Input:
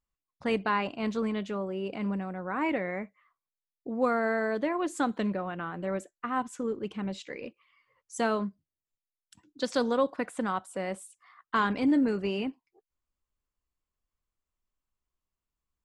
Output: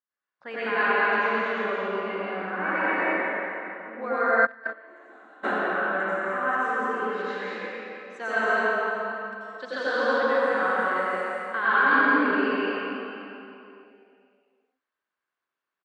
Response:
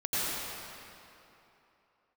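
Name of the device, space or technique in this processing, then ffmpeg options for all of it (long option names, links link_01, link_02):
station announcement: -filter_complex "[0:a]highpass=400,lowpass=3600,equalizer=frequency=1600:width_type=o:width=0.46:gain=11,aecho=1:1:174.9|218.7:0.631|0.631[link_01];[1:a]atrim=start_sample=2205[link_02];[link_01][link_02]afir=irnorm=-1:irlink=0,asplit=3[link_03][link_04][link_05];[link_03]afade=type=out:start_time=4.45:duration=0.02[link_06];[link_04]agate=range=-27dB:threshold=-8dB:ratio=16:detection=peak,afade=type=in:start_time=4.45:duration=0.02,afade=type=out:start_time=5.43:duration=0.02[link_07];[link_05]afade=type=in:start_time=5.43:duration=0.02[link_08];[link_06][link_07][link_08]amix=inputs=3:normalize=0,volume=-6dB"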